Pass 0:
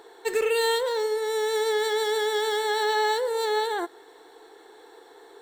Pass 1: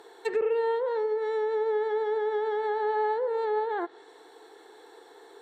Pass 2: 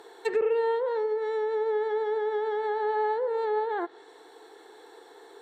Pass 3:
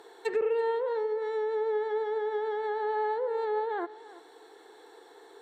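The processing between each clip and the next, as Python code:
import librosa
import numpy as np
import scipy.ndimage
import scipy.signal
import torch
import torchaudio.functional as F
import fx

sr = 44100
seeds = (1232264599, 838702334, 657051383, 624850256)

y1 = scipy.signal.sosfilt(scipy.signal.butter(2, 75.0, 'highpass', fs=sr, output='sos'), x)
y1 = fx.env_lowpass_down(y1, sr, base_hz=1100.0, full_db=-22.0)
y1 = y1 * 10.0 ** (-1.5 / 20.0)
y2 = fx.rider(y1, sr, range_db=10, speed_s=2.0)
y3 = y2 + 10.0 ** (-18.5 / 20.0) * np.pad(y2, (int(337 * sr / 1000.0), 0))[:len(y2)]
y3 = y3 * 10.0 ** (-2.5 / 20.0)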